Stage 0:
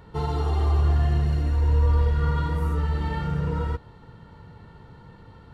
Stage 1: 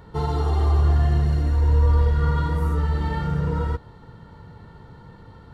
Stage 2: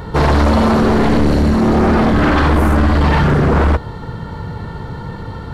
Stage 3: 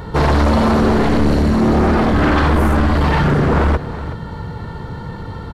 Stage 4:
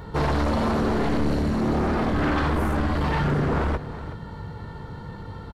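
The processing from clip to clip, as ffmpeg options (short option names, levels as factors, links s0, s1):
-af "equalizer=f=2600:w=3.4:g=-5.5,volume=1.33"
-af "aeval=exprs='0.376*sin(PI/2*5.01*val(0)/0.376)':c=same"
-af "aecho=1:1:373:0.2,volume=0.841"
-filter_complex "[0:a]asplit=2[s0][s1];[s1]adelay=20,volume=0.211[s2];[s0][s2]amix=inputs=2:normalize=0,volume=0.355"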